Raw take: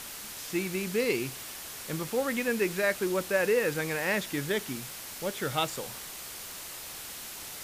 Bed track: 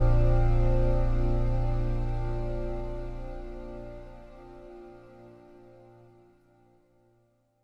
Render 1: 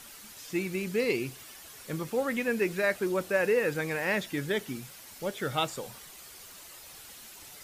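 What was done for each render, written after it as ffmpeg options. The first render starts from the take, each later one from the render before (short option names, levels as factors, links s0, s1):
-af "afftdn=nr=9:nf=-42"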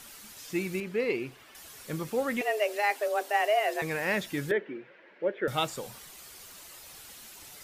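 -filter_complex "[0:a]asettb=1/sr,asplit=3[s0][s1][s2];[s0]atrim=end=0.804[s3];[s1]atrim=start=0.8:end=1.55,asetpts=PTS-STARTPTS,afade=t=in:d=0.004:c=qsin,afade=t=out:st=0.746:d=0.004:c=qsin,bass=f=250:g=-6,treble=f=4000:g=-14[s4];[s2]atrim=start=1.546[s5];[s3][s4]acrossfade=d=0.004:c1=hsin:c2=qsin[s6];[s6][s5]acrossfade=d=0.004:c1=qsin:c2=hsin,asettb=1/sr,asplit=3[s7][s8][s9];[s7]atrim=end=2.414[s10];[s8]atrim=start=2.41:end=3.82,asetpts=PTS-STARTPTS,afade=t=in:d=0.004:c=qsin,afade=t=out:st=1.406:d=0.004:c=qsin,afreqshift=210[s11];[s9]atrim=start=3.816[s12];[s10][s11]acrossfade=d=0.004:c1=hsin:c2=qsin[s13];[s13][s12]acrossfade=d=0.004:c1=qsin:c2=hsin,asettb=1/sr,asplit=3[s14][s15][s16];[s14]atrim=end=4.514[s17];[s15]atrim=start=4.51:end=5.48,asetpts=PTS-STARTPTS,afade=t=in:d=0.004:c=qsin,afade=t=out:st=0.966:d=0.004:c=qsin,highpass=f=210:w=0.5412,highpass=f=210:w=1.3066,equalizer=f=240:t=q:w=4:g=-9,equalizer=f=350:t=q:w=4:g=7,equalizer=f=530:t=q:w=4:g=8,equalizer=f=770:t=q:w=4:g=-7,equalizer=f=1200:t=q:w=4:g=-7,equalizer=f=1700:t=q:w=4:g=5,lowpass=f=2300:w=0.5412,lowpass=f=2300:w=1.3066[s18];[s16]atrim=start=5.476[s19];[s17][s18]acrossfade=d=0.004:c1=hsin:c2=qsin[s20];[s20][s19]acrossfade=d=0.004:c1=qsin:c2=hsin"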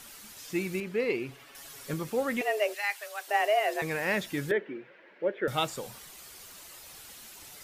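-filter_complex "[0:a]asettb=1/sr,asplit=3[s0][s1][s2];[s0]atrim=end=1.284[s3];[s1]atrim=start=1.28:end=1.94,asetpts=PTS-STARTPTS,afade=t=in:d=0.004:c=qsin,afade=t=out:st=0.656:d=0.004:c=qsin,aecho=1:1:7.2:0.65,atrim=end_sample=29106[s4];[s2]atrim=start=1.936[s5];[s3][s4]acrossfade=d=0.004:c1=hsin:c2=qsin[s6];[s6][s5]acrossfade=d=0.004:c1=qsin:c2=hsin,asplit=3[s7][s8][s9];[s7]afade=t=out:st=2.73:d=0.02[s10];[s8]highpass=1400,afade=t=in:st=2.73:d=0.02,afade=t=out:st=3.27:d=0.02[s11];[s9]afade=t=in:st=3.27:d=0.02[s12];[s10][s11][s12]amix=inputs=3:normalize=0"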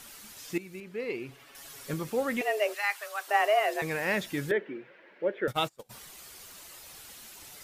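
-filter_complex "[0:a]asettb=1/sr,asplit=3[s0][s1][s2];[s0]atrim=end=2.664[s3];[s1]atrim=start=2.66:end=3.66,asetpts=PTS-STARTPTS,afade=t=in:d=0.004:c=qsin,afade=t=out:st=0.996:d=0.004:c=qsin,equalizer=f=1200:t=o:w=0.64:g=7.5[s4];[s2]atrim=start=3.656[s5];[s3][s4]acrossfade=d=0.004:c1=hsin:c2=qsin[s6];[s6][s5]acrossfade=d=0.004:c1=qsin:c2=hsin,asplit=3[s7][s8][s9];[s7]afade=t=out:st=5.49:d=0.02[s10];[s8]agate=range=0.0398:threshold=0.0178:ratio=16:release=100:detection=peak,afade=t=in:st=5.49:d=0.02,afade=t=out:st=5.89:d=0.02[s11];[s9]afade=t=in:st=5.89:d=0.02[s12];[s10][s11][s12]amix=inputs=3:normalize=0,asplit=2[s13][s14];[s13]atrim=end=0.58,asetpts=PTS-STARTPTS,afade=t=out:st=0.576:d=0.004:c=hsin:silence=0.188365[s15];[s14]atrim=start=0.58,asetpts=PTS-STARTPTS,afade=t=in:d=1.12:silence=0.188365[s16];[s15][s16]concat=n=2:v=0:a=1"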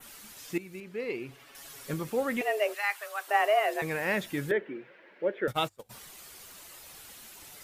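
-af "bandreject=f=50:t=h:w=6,bandreject=f=100:t=h:w=6,adynamicequalizer=threshold=0.00251:dfrequency=5300:dqfactor=1.1:tfrequency=5300:tqfactor=1.1:attack=5:release=100:ratio=0.375:range=2:mode=cutabove:tftype=bell"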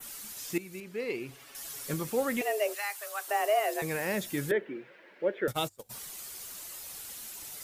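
-filter_complex "[0:a]acrossover=split=730|4800[s0][s1][s2];[s1]alimiter=level_in=1.33:limit=0.0631:level=0:latency=1:release=336,volume=0.75[s3];[s2]acontrast=88[s4];[s0][s3][s4]amix=inputs=3:normalize=0"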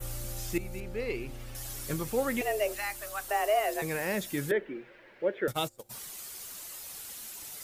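-filter_complex "[1:a]volume=0.141[s0];[0:a][s0]amix=inputs=2:normalize=0"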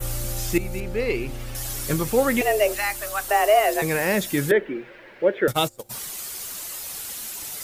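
-af "volume=2.99"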